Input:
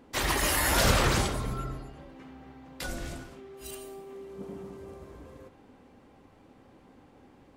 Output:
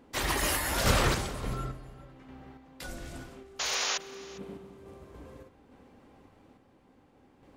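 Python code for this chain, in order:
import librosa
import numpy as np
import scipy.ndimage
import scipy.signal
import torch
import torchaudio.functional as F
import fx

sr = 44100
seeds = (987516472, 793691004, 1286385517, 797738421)

p1 = fx.spec_paint(x, sr, seeds[0], shape='noise', start_s=3.59, length_s=0.39, low_hz=450.0, high_hz=7100.0, level_db=-26.0)
p2 = fx.rev_spring(p1, sr, rt60_s=3.0, pass_ms=(31,), chirp_ms=55, drr_db=20.0)
p3 = fx.tremolo_random(p2, sr, seeds[1], hz=3.5, depth_pct=55)
y = p3 + fx.echo_single(p3, sr, ms=404, db=-20.5, dry=0)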